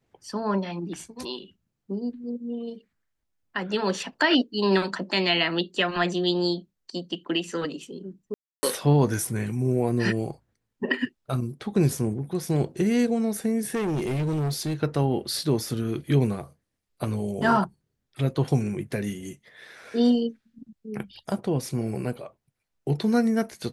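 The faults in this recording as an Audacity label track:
8.340000	8.630000	drop-out 290 ms
13.740000	14.750000	clipping −23.5 dBFS

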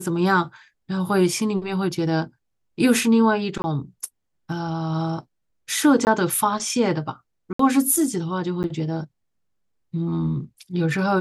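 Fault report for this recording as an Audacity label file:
3.620000	3.640000	drop-out 20 ms
6.050000	6.070000	drop-out 19 ms
7.530000	7.590000	drop-out 64 ms
8.630000	8.640000	drop-out 9.7 ms

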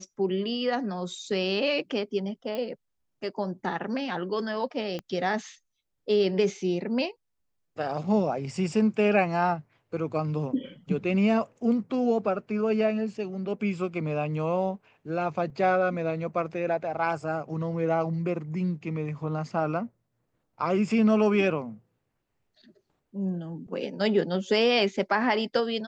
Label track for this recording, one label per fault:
2.550000	2.550000	click −21 dBFS
4.990000	4.990000	click −22 dBFS
15.500000	15.500000	drop-out 3.2 ms

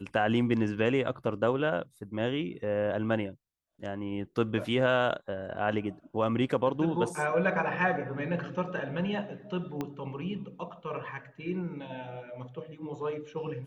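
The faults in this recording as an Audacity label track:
9.810000	9.810000	click −20 dBFS

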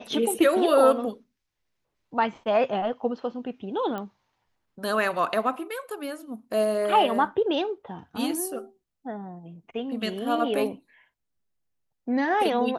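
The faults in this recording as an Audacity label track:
3.980000	3.980000	click −21 dBFS

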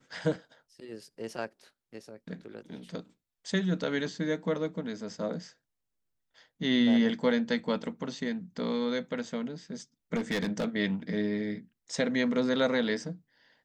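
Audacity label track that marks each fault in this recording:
10.150000	10.660000	clipping −26 dBFS

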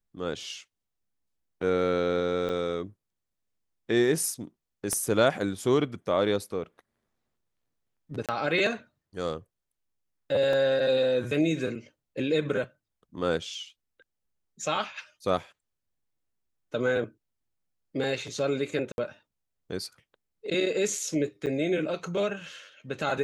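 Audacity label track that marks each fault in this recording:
2.490000	2.500000	drop-out 5.2 ms
4.930000	4.930000	click −16 dBFS
8.260000	8.290000	drop-out 27 ms
10.530000	10.530000	drop-out 3.2 ms
18.920000	18.980000	drop-out 61 ms
21.460000	21.470000	drop-out 7.8 ms

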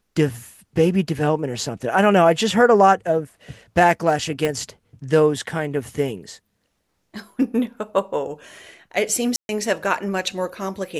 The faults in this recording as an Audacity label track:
4.450000	4.450000	click −9 dBFS
9.360000	9.490000	drop-out 131 ms

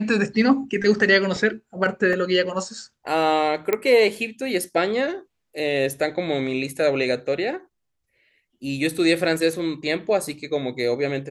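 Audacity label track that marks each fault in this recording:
2.130000	2.130000	drop-out 2 ms
3.730000	3.730000	click −8 dBFS

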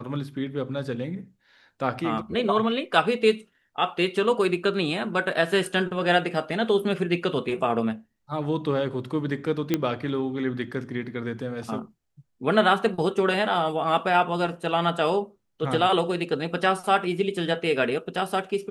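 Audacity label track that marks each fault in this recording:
9.740000	9.740000	click −9 dBFS

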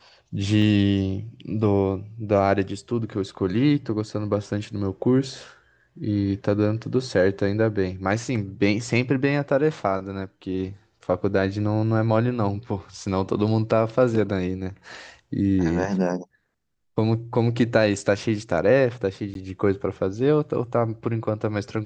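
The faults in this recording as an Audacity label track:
0.620000	0.620000	drop-out 2.2 ms
19.340000	19.350000	drop-out 12 ms

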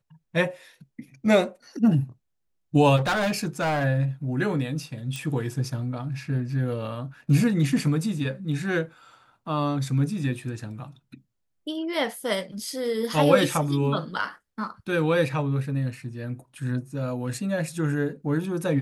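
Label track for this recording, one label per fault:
2.960000	3.850000	clipping −21 dBFS
5.160000	5.160000	click

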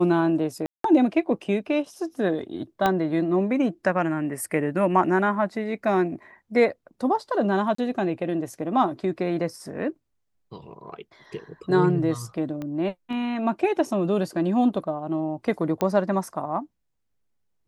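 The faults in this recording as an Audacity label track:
0.660000	0.840000	drop-out 183 ms
2.860000	2.860000	click −9 dBFS
7.750000	7.780000	drop-out 34 ms
12.620000	12.620000	click −21 dBFS
15.810000	15.810000	click −12 dBFS

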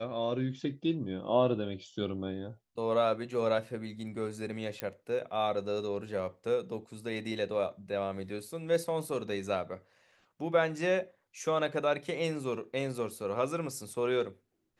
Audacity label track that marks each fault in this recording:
4.800000	4.800000	click −18 dBFS

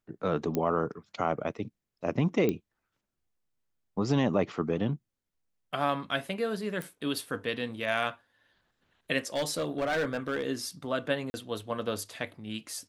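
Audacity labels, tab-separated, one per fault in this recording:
0.550000	0.550000	click −16 dBFS
2.490000	2.490000	click −16 dBFS
6.820000	6.820000	click
9.340000	10.440000	clipping −25 dBFS
11.300000	11.340000	drop-out 40 ms

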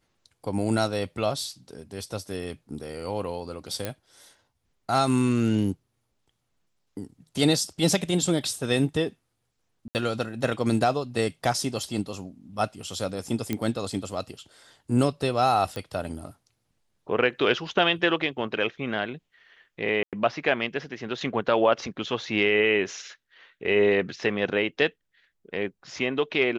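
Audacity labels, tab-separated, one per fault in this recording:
3.850000	3.850000	click −14 dBFS
9.880000	9.950000	drop-out 69 ms
13.530000	13.530000	click −13 dBFS
15.760000	15.760000	click −19 dBFS
20.030000	20.130000	drop-out 97 ms

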